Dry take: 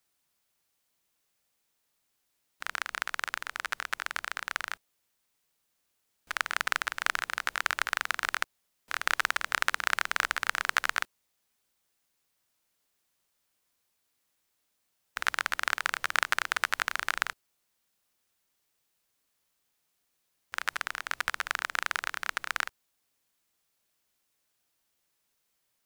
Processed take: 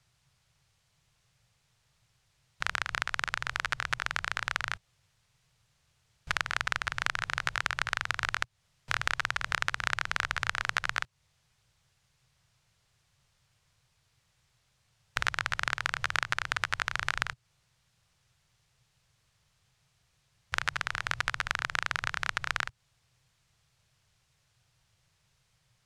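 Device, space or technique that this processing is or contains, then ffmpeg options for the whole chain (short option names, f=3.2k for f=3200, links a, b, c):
jukebox: -af "lowpass=6.6k,lowshelf=f=180:t=q:w=3:g=12.5,acompressor=threshold=-34dB:ratio=4,volume=8dB"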